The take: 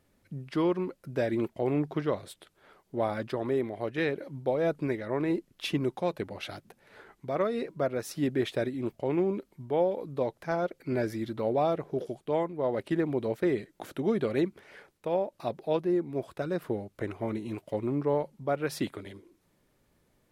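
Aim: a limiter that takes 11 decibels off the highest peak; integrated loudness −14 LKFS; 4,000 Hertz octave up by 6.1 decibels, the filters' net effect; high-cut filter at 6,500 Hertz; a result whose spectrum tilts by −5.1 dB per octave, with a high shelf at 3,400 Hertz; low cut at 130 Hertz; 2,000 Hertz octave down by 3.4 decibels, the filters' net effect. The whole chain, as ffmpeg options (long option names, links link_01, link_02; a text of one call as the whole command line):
ffmpeg -i in.wav -af "highpass=130,lowpass=6500,equalizer=frequency=2000:width_type=o:gain=-7.5,highshelf=frequency=3400:gain=3.5,equalizer=frequency=4000:width_type=o:gain=8,volume=22.5dB,alimiter=limit=-3.5dB:level=0:latency=1" out.wav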